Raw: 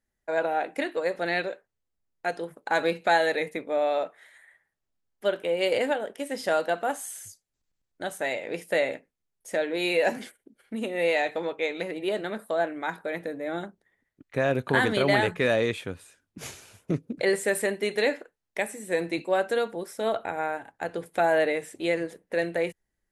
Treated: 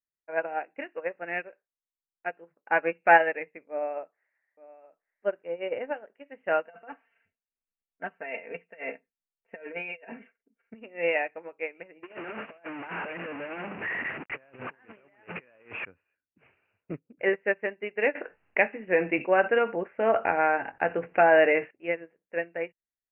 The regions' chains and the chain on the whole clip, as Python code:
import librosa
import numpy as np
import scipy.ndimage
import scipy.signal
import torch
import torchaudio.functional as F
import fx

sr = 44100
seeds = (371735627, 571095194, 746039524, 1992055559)

y = fx.chain(x, sr, fx.lowpass(hz=1200.0, slope=6),
    fx.echo_single(ms=871, db=-8.0), at=(3.7, 5.94))
y = fx.chain(y, sr, fx.comb(ms=4.4, depth=0.8),
    fx.over_compress(threshold_db=-29.0, ratio=-1.0), at=(6.65, 10.74))
y = fx.chain(y, sr, fx.delta_mod(bps=32000, step_db=-22.5),
    fx.highpass(hz=130.0, slope=12),
    fx.over_compress(threshold_db=-29.0, ratio=-0.5), at=(12.03, 15.85))
y = fx.chain(y, sr, fx.doubler(ms=22.0, db=-13.0),
    fx.env_flatten(amount_pct=70), at=(18.15, 21.71))
y = scipy.signal.sosfilt(scipy.signal.cheby1(8, 1.0, 2800.0, 'lowpass', fs=sr, output='sos'), y)
y = fx.tilt_eq(y, sr, slope=1.5)
y = fx.upward_expand(y, sr, threshold_db=-36.0, expansion=2.5)
y = F.gain(torch.from_numpy(y), 6.0).numpy()